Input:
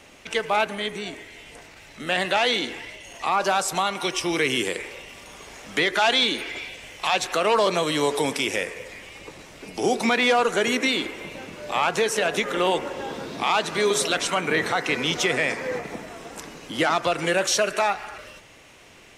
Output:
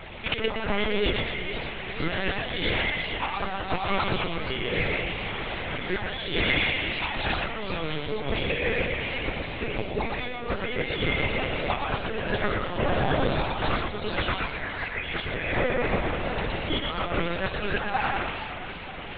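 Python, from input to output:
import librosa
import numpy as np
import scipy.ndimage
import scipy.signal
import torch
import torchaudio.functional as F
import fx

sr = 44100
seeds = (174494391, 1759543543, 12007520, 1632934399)

y = fx.low_shelf(x, sr, hz=66.0, db=6.0)
y = y + 0.74 * np.pad(y, (int(2.4 * sr / 1000.0), 0))[:len(y)]
y = fx.peak_eq(y, sr, hz=1900.0, db=12.5, octaves=1.3, at=(14.38, 15.25))
y = fx.over_compress(y, sr, threshold_db=-30.0, ratio=-1.0)
y = fx.echo_thinned(y, sr, ms=118, feedback_pct=35, hz=370.0, wet_db=-3.5)
y = fx.lpc_vocoder(y, sr, seeds[0], excitation='pitch_kept', order=10)
y = fx.echo_warbled(y, sr, ms=474, feedback_pct=58, rate_hz=2.8, cents=215, wet_db=-12.0)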